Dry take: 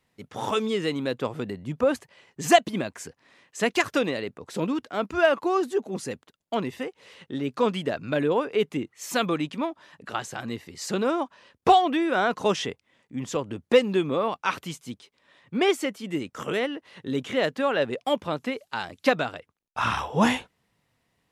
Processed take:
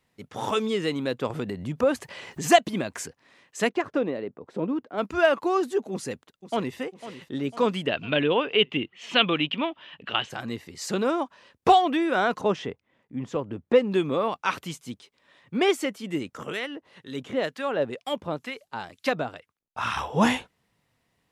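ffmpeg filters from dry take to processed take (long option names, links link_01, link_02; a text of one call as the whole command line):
ffmpeg -i in.wav -filter_complex "[0:a]asettb=1/sr,asplit=3[link_01][link_02][link_03];[link_01]atrim=end=1.304[link_04];[link_02]atrim=start=1.3:end=3.06,asetpts=PTS-STARTPTS,afade=type=in:duration=0.004:curve=qsin,afade=type=out:start_time=1.756:duration=0.004:curve=qsin,acompressor=mode=upward:threshold=-26dB:ratio=2.5:attack=3.2:release=140:knee=2.83:detection=peak[link_05];[link_03]atrim=start=3.056[link_06];[link_04][link_05]acrossfade=duration=0.004:curve1=hsin:curve2=qsin[link_07];[link_07][link_06]acrossfade=duration=0.004:curve1=qsin:curve2=hsin,asplit=3[link_08][link_09][link_10];[link_08]afade=type=out:start_time=3.68:duration=0.02[link_11];[link_09]bandpass=frequency=370:width_type=q:width=0.54,afade=type=in:start_time=3.68:duration=0.02,afade=type=out:start_time=4.97:duration=0.02[link_12];[link_10]afade=type=in:start_time=4.97:duration=0.02[link_13];[link_11][link_12][link_13]amix=inputs=3:normalize=0,asplit=2[link_14][link_15];[link_15]afade=type=in:start_time=5.92:duration=0.01,afade=type=out:start_time=6.78:duration=0.01,aecho=0:1:500|1000|1500|2000|2500|3000:0.211349|0.116242|0.063933|0.0351632|0.0193397|0.0106369[link_16];[link_14][link_16]amix=inputs=2:normalize=0,asplit=3[link_17][link_18][link_19];[link_17]afade=type=out:start_time=7.86:duration=0.02[link_20];[link_18]lowpass=frequency=3000:width_type=q:width=6.2,afade=type=in:start_time=7.86:duration=0.02,afade=type=out:start_time=10.29:duration=0.02[link_21];[link_19]afade=type=in:start_time=10.29:duration=0.02[link_22];[link_20][link_21][link_22]amix=inputs=3:normalize=0,asettb=1/sr,asplit=3[link_23][link_24][link_25];[link_23]atrim=end=12.414[link_26];[link_24]atrim=start=12.41:end=13.92,asetpts=PTS-STARTPTS,afade=type=in:duration=0.004:curve=qsin,afade=type=out:start_time=1.506:duration=0.004:curve=qsin,lowpass=frequency=1400:poles=1[link_27];[link_25]atrim=start=13.916[link_28];[link_26][link_27]acrossfade=duration=0.004:curve1=hsin:curve2=qsin[link_29];[link_29][link_28]acrossfade=duration=0.004:curve1=qsin:curve2=hsin,asettb=1/sr,asplit=3[link_30][link_31][link_32];[link_30]atrim=end=16.374[link_33];[link_31]atrim=start=16.37:end=19.96,asetpts=PTS-STARTPTS,afade=type=in:duration=0.004:curve=qsin,afade=type=out:start_time=3.586:duration=0.004:curve=qsin,acrossover=split=1100[link_34][link_35];[link_34]aeval=exprs='val(0)*(1-0.7/2+0.7/2*cos(2*PI*2.1*n/s))':channel_layout=same[link_36];[link_35]aeval=exprs='val(0)*(1-0.7/2-0.7/2*cos(2*PI*2.1*n/s))':channel_layout=same[link_37];[link_36][link_37]amix=inputs=2:normalize=0[link_38];[link_32]atrim=start=19.956[link_39];[link_33][link_38]acrossfade=duration=0.004:curve1=hsin:curve2=qsin[link_40];[link_40][link_39]acrossfade=duration=0.004:curve1=qsin:curve2=hsin" out.wav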